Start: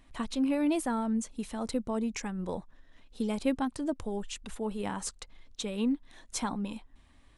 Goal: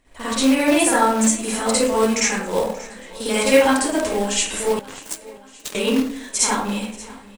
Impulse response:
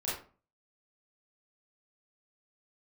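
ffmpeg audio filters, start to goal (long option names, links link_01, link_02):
-filter_complex "[0:a]equalizer=frequency=500:width_type=o:width=1:gain=10,equalizer=frequency=2000:width_type=o:width=1:gain=4,equalizer=frequency=8000:width_type=o:width=1:gain=9[link_01];[1:a]atrim=start_sample=2205,asetrate=26019,aresample=44100[link_02];[link_01][link_02]afir=irnorm=-1:irlink=0,acrossover=split=1000[link_03][link_04];[link_03]acrusher=bits=3:mode=log:mix=0:aa=0.000001[link_05];[link_04]dynaudnorm=framelen=140:gausssize=5:maxgain=15.5dB[link_06];[link_05][link_06]amix=inputs=2:normalize=0,asettb=1/sr,asplit=3[link_07][link_08][link_09];[link_07]atrim=end=4.794[link_10];[link_08]atrim=start=4.79:end=5.75,asetpts=PTS-STARTPTS,afade=type=in:duration=0.004:curve=qsin,afade=type=out:start_time=0.956:duration=0.004:curve=qsin,aeval=exprs='0.891*(cos(1*acos(clip(val(0)/0.891,-1,1)))-cos(1*PI/2))+0.316*(cos(3*acos(clip(val(0)/0.891,-1,1)))-cos(3*PI/2))':channel_layout=same[link_11];[link_09]atrim=start=5.746[link_12];[link_10][link_11]acrossfade=duration=0.004:curve1=hsin:curve2=qsin[link_13];[link_13][link_12]acrossfade=duration=0.004:curve1=qsin:curve2=hsin,asplit=2[link_14][link_15];[link_15]aecho=0:1:582|1164|1746|2328:0.1|0.051|0.026|0.0133[link_16];[link_14][link_16]amix=inputs=2:normalize=0,volume=-4dB"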